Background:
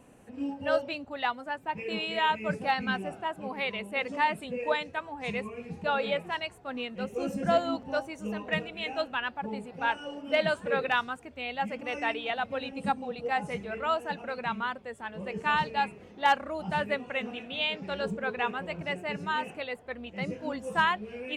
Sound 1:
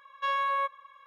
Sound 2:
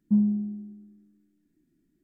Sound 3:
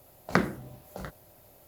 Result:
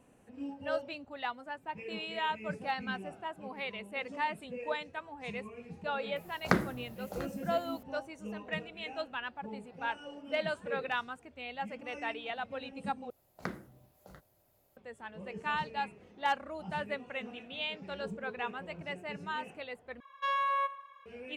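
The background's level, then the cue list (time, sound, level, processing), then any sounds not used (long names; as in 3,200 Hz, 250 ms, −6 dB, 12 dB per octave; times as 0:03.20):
background −7 dB
0:06.16: mix in 3 −2.5 dB
0:13.10: overwrite with 3 −14.5 dB
0:20.00: overwrite with 1 −3 dB + repeating echo 86 ms, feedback 49%, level −17 dB
not used: 2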